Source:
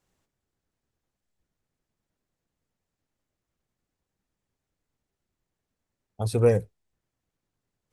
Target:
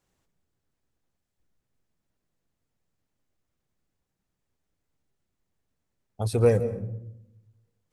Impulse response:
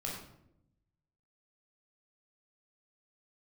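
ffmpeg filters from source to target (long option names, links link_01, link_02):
-filter_complex "[0:a]asplit=2[link_01][link_02];[1:a]atrim=start_sample=2205,lowshelf=frequency=460:gain=8,adelay=137[link_03];[link_02][link_03]afir=irnorm=-1:irlink=0,volume=-17.5dB[link_04];[link_01][link_04]amix=inputs=2:normalize=0"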